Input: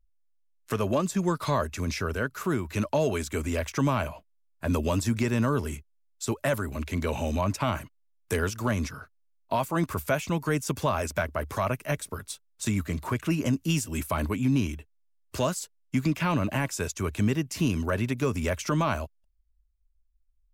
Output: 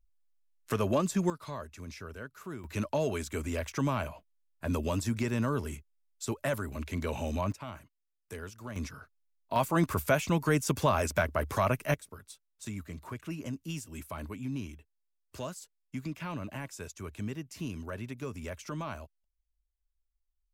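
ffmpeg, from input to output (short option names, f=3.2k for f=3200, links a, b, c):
-af "asetnsamples=n=441:p=0,asendcmd='1.3 volume volume -14dB;2.64 volume volume -5dB;7.52 volume volume -15dB;8.76 volume volume -6.5dB;9.56 volume volume 0dB;11.94 volume volume -12dB',volume=-2dB"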